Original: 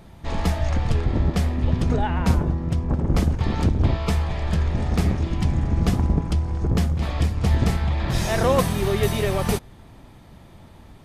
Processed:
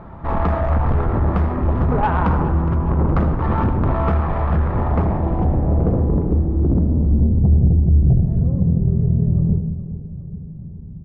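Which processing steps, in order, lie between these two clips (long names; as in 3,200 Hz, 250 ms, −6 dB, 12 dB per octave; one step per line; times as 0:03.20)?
0:06.89–0:08.22: bass and treble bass +9 dB, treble +14 dB
in parallel at −3 dB: brickwall limiter −12 dBFS, peak gain reduction 11 dB
on the sum: soft clipping −15.5 dBFS, distortion −8 dB
low-pass filter sweep 1,200 Hz → 160 Hz, 0:04.77–0:07.65
harmonic generator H 5 −22 dB, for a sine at −7 dBFS
repeating echo 414 ms, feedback 58%, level −14.5 dB
on a send at −8.5 dB: convolution reverb RT60 0.70 s, pre-delay 72 ms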